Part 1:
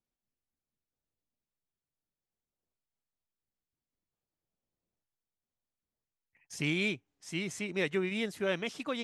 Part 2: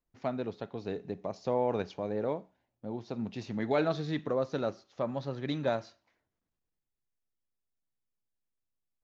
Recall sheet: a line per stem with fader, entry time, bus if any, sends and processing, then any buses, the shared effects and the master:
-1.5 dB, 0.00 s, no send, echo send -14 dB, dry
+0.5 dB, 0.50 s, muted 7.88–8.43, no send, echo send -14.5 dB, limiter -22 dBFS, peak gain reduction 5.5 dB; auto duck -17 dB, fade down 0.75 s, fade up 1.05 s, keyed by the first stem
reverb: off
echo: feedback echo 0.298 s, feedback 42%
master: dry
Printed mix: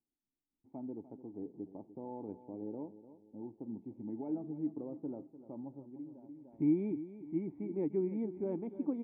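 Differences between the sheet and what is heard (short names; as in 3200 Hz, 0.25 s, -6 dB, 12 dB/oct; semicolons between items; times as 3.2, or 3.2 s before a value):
stem 1 -1.5 dB -> +8.0 dB; master: extra vocal tract filter u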